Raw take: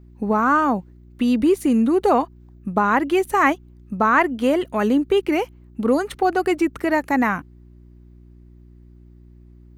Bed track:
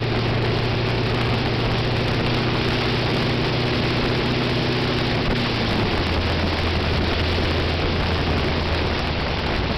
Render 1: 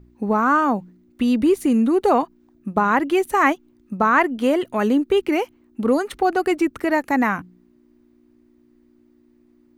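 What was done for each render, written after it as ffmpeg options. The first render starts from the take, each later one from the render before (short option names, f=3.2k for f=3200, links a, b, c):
-af "bandreject=f=60:t=h:w=4,bandreject=f=120:t=h:w=4,bandreject=f=180:t=h:w=4"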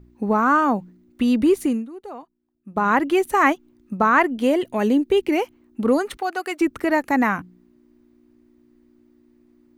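-filter_complex "[0:a]asettb=1/sr,asplit=3[a][b][c];[a]atrim=end=4.334[d];[b]atrim=start=4.33:end=5.38,asetpts=PTS-STARTPTS,afade=t=in:d=0.004:c=qsin,afade=t=out:st=1.046:d=0.004:c=qsin,equalizer=f=1.3k:w=2.6:g=-8[e];[c]atrim=start=5.376[f];[d][e]acrossfade=d=0.004:c1=hsin:c2=qsin[g];[g][f]acrossfade=d=0.004:c1=qsin:c2=hsin,asettb=1/sr,asplit=3[h][i][j];[h]atrim=end=6.174[k];[i]atrim=start=6.17:end=6.61,asetpts=PTS-STARTPTS,afade=t=in:d=0.004:c=qsin,afade=t=out:st=0.436:d=0.004:c=qsin,highpass=f=1.2k:p=1[l];[j]atrim=start=6.606[m];[k][l]acrossfade=d=0.004:c1=hsin:c2=qsin[n];[n][m]acrossfade=d=0.004:c1=qsin:c2=hsin,asplit=3[o][p][q];[o]atrim=end=1.86,asetpts=PTS-STARTPTS,afade=t=out:st=1.62:d=0.24:silence=0.105925[r];[p]atrim=start=1.86:end=2.64,asetpts=PTS-STARTPTS,volume=-19.5dB[s];[q]atrim=start=2.64,asetpts=PTS-STARTPTS,afade=t=in:d=0.24:silence=0.105925[t];[r][s][t]concat=n=3:v=0:a=1"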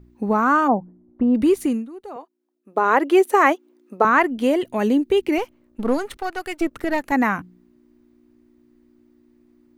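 -filter_complex "[0:a]asplit=3[a][b][c];[a]afade=t=out:st=0.67:d=0.02[d];[b]lowpass=f=770:t=q:w=1.9,afade=t=in:st=0.67:d=0.02,afade=t=out:st=1.34:d=0.02[e];[c]afade=t=in:st=1.34:d=0.02[f];[d][e][f]amix=inputs=3:normalize=0,asettb=1/sr,asplit=3[g][h][i];[g]atrim=end=2.164[j];[h]atrim=start=2.16:end=4.05,asetpts=PTS-STARTPTS,afade=t=in:d=0.004:c=qsin,afade=t=out:st=1.886:d=0.004:c=qsin,highpass=f=420:t=q:w=2.1[k];[i]atrim=start=4.046[l];[j][k]acrossfade=d=0.004:c1=hsin:c2=qsin[m];[m][l]acrossfade=d=0.004:c1=qsin:c2=hsin,asettb=1/sr,asplit=3[n][o][p];[n]atrim=end=5.384[q];[o]atrim=start=5.38:end=7.12,asetpts=PTS-STARTPTS,afade=t=in:d=0.004:c=qsin,afade=t=out:st=1.736:d=0.004:c=qsin,aeval=exprs='if(lt(val(0),0),0.447*val(0),val(0))':c=same[r];[p]atrim=start=7.116[s];[q][r]acrossfade=d=0.004:c1=hsin:c2=qsin[t];[t][s]acrossfade=d=0.004:c1=qsin:c2=hsin"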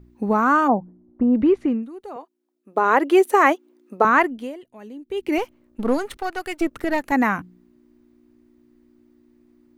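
-filter_complex "[0:a]asettb=1/sr,asplit=3[a][b][c];[a]atrim=end=0.704[d];[b]atrim=start=0.7:end=1.83,asetpts=PTS-STARTPTS,afade=t=in:d=0.004:c=qsin,afade=t=out:st=1.126:d=0.004:c=qsin,lowpass=2.1k[e];[c]atrim=start=1.826[f];[d][e]acrossfade=d=0.004:c1=hsin:c2=qsin[g];[g][f]acrossfade=d=0.004:c1=qsin:c2=hsin,asplit=3[h][i][j];[h]atrim=end=4.64,asetpts=PTS-STARTPTS,afade=t=out:st=4.21:d=0.43:c=qua:silence=0.1[k];[i]atrim=start=4.64:end=4.93,asetpts=PTS-STARTPTS,volume=-20dB[l];[j]atrim=start=4.93,asetpts=PTS-STARTPTS,afade=t=in:d=0.43:c=qua:silence=0.1[m];[k][l][m]concat=n=3:v=0:a=1"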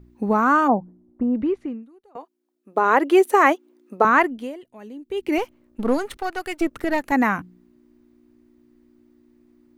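-filter_complex "[0:a]asplit=2[a][b];[a]atrim=end=2.15,asetpts=PTS-STARTPTS,afade=t=out:st=0.75:d=1.4:silence=0.0749894[c];[b]atrim=start=2.15,asetpts=PTS-STARTPTS,afade=t=in:d=0.004:c=hsin:silence=0.0749894[d];[c][d]concat=n=2:v=0:a=1"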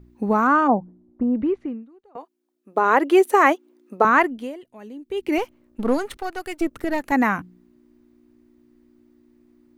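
-filter_complex "[0:a]asettb=1/sr,asplit=3[a][b][c];[a]atrim=end=0.474[d];[b]atrim=start=0.47:end=2.18,asetpts=PTS-STARTPTS,afade=t=in:d=0.004:c=qsin,afade=t=out:st=1.706:d=0.004:c=qsin,aemphasis=mode=reproduction:type=50fm[e];[c]atrim=start=2.176[f];[d][e]acrossfade=d=0.004:c1=hsin:c2=qsin[g];[g][f]acrossfade=d=0.004:c1=qsin:c2=hsin,asettb=1/sr,asplit=3[h][i][j];[h]atrim=end=6.214[k];[i]atrim=start=6.21:end=7,asetpts=PTS-STARTPTS,afade=t=in:d=0.004:c=qsin,afade=t=out:st=0.786:d=0.004:c=qsin,equalizer=f=1.8k:w=0.33:g=-3.5[l];[j]atrim=start=6.996[m];[k][l]acrossfade=d=0.004:c1=hsin:c2=qsin[n];[n][m]acrossfade=d=0.004:c1=qsin:c2=hsin"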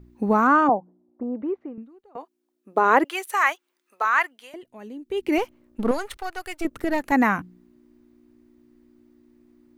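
-filter_complex "[0:a]asettb=1/sr,asplit=3[a][b][c];[a]atrim=end=0.694[d];[b]atrim=start=0.69:end=1.78,asetpts=PTS-STARTPTS,afade=t=in:d=0.004:c=qsin,afade=t=out:st=1.086:d=0.004:c=qsin,bandpass=f=710:t=q:w=0.99[e];[c]atrim=start=1.776[f];[d][e]acrossfade=d=0.004:c1=hsin:c2=qsin[g];[g][f]acrossfade=d=0.004:c1=qsin:c2=hsin,asettb=1/sr,asplit=3[h][i][j];[h]atrim=end=3.044[k];[i]atrim=start=3.04:end=4.54,asetpts=PTS-STARTPTS,afade=t=in:d=0.004:c=qsin,afade=t=out:st=1.496:d=0.004:c=qsin,highpass=1.3k[l];[j]atrim=start=4.536[m];[k][l]acrossfade=d=0.004:c1=hsin:c2=qsin[n];[n][m]acrossfade=d=0.004:c1=qsin:c2=hsin,asettb=1/sr,asplit=3[o][p][q];[o]atrim=end=5.914[r];[p]atrim=start=5.91:end=6.65,asetpts=PTS-STARTPTS,afade=t=in:d=0.004:c=qsin,afade=t=out:st=0.736:d=0.004:c=qsin,equalizer=f=230:t=o:w=1.6:g=-13[s];[q]atrim=start=6.646[t];[r][s]acrossfade=d=0.004:c1=hsin:c2=qsin[u];[u][t]acrossfade=d=0.004:c1=qsin:c2=hsin"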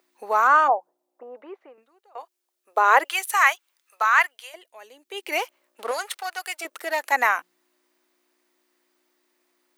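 -af "highpass=f=540:w=0.5412,highpass=f=540:w=1.3066,highshelf=f=2.2k:g=8.5"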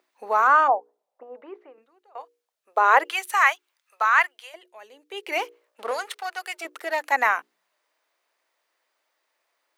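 -af "highshelf=f=5.9k:g=-9,bandreject=f=60:t=h:w=6,bandreject=f=120:t=h:w=6,bandreject=f=180:t=h:w=6,bandreject=f=240:t=h:w=6,bandreject=f=300:t=h:w=6,bandreject=f=360:t=h:w=6,bandreject=f=420:t=h:w=6,bandreject=f=480:t=h:w=6"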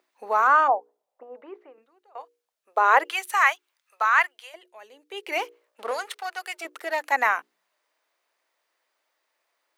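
-af "volume=-1dB"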